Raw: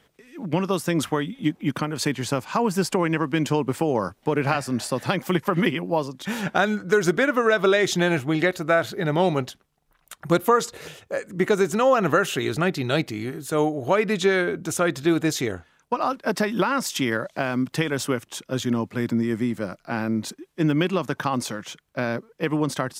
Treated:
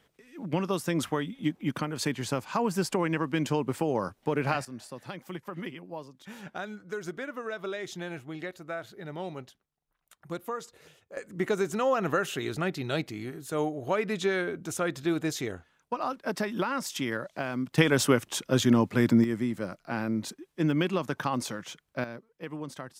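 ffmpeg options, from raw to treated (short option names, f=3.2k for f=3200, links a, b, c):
-af "asetnsamples=n=441:p=0,asendcmd='4.65 volume volume -16.5dB;11.17 volume volume -7.5dB;17.78 volume volume 2dB;19.24 volume volume -5dB;22.04 volume volume -14.5dB',volume=-5.5dB"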